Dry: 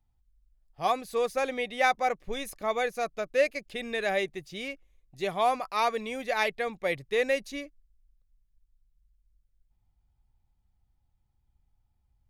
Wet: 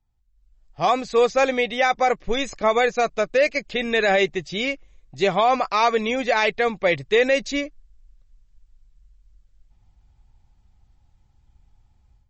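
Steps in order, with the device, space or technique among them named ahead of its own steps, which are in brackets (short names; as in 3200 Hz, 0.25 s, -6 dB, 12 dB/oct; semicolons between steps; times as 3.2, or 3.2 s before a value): low-bitrate web radio (AGC gain up to 14 dB; limiter -9 dBFS, peak gain reduction 7 dB; MP3 32 kbps 32000 Hz)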